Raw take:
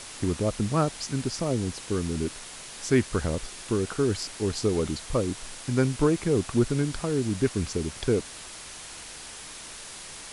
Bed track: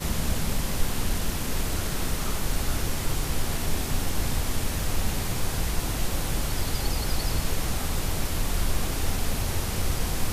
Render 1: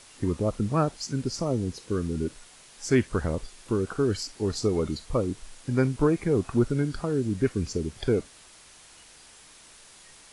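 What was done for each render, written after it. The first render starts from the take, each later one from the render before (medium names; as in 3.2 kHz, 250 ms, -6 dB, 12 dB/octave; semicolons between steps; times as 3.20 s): noise print and reduce 10 dB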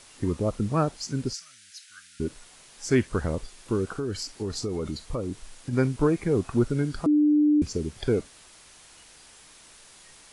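1.33–2.20 s: elliptic high-pass 1.5 kHz; 3.88–5.73 s: compression 4:1, threshold -26 dBFS; 7.06–7.62 s: bleep 298 Hz -16.5 dBFS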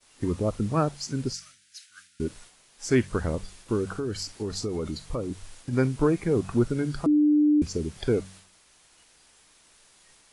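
expander -45 dBFS; de-hum 47.45 Hz, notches 4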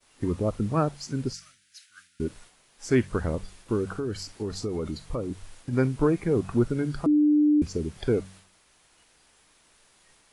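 peaking EQ 6.7 kHz -4.5 dB 2.1 oct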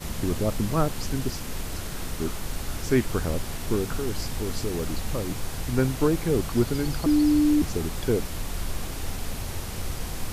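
add bed track -5 dB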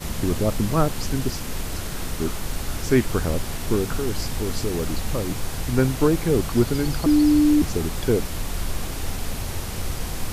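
trim +3.5 dB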